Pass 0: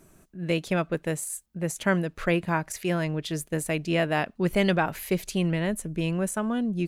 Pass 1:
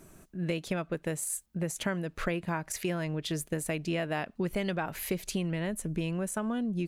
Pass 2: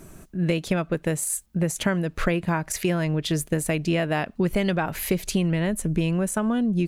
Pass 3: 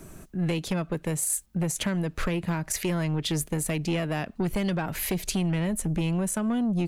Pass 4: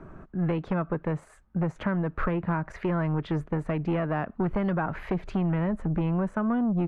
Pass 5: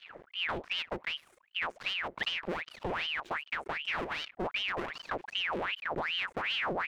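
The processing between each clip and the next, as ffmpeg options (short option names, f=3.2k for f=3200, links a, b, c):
-af "acompressor=threshold=-31dB:ratio=5,volume=2dB"
-af "lowshelf=f=180:g=4.5,volume=7dB"
-filter_complex "[0:a]acrossover=split=310|3000[a][b][c];[b]acompressor=threshold=-27dB:ratio=3[d];[a][d][c]amix=inputs=3:normalize=0,acrossover=split=4000[e][f];[e]asoftclip=type=tanh:threshold=-21dB[g];[g][f]amix=inputs=2:normalize=0"
-af "lowpass=f=1.3k:t=q:w=1.8"
-af "aeval=exprs='max(val(0),0)':c=same,aeval=exprs='val(0)*sin(2*PI*1700*n/s+1700*0.8/2.6*sin(2*PI*2.6*n/s))':c=same,volume=-2dB"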